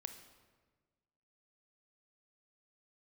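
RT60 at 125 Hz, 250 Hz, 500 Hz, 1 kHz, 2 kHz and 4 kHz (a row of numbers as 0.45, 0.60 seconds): 1.7, 1.7, 1.5, 1.3, 1.2, 0.95 seconds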